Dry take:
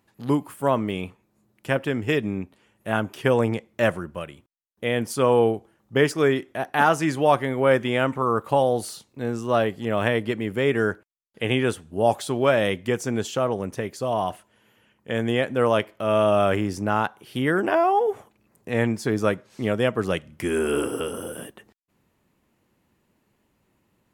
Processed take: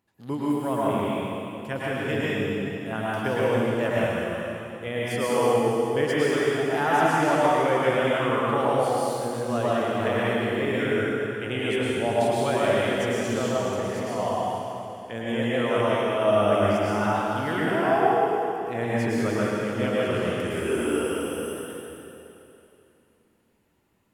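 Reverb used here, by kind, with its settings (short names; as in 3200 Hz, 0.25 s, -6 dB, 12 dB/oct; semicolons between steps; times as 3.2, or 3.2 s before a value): plate-style reverb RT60 2.9 s, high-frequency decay 0.95×, pre-delay 95 ms, DRR -8 dB; gain -9 dB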